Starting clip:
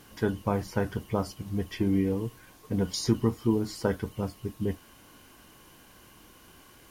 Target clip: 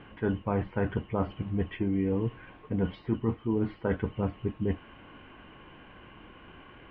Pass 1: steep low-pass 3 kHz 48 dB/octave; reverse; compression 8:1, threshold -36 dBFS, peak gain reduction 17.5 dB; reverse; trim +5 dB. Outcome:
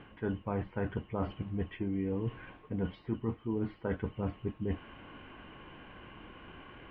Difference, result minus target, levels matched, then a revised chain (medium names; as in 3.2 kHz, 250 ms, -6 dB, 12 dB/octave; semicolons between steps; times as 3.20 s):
compression: peak gain reduction +5.5 dB
steep low-pass 3 kHz 48 dB/octave; reverse; compression 8:1, threshold -29.5 dBFS, peak gain reduction 12 dB; reverse; trim +5 dB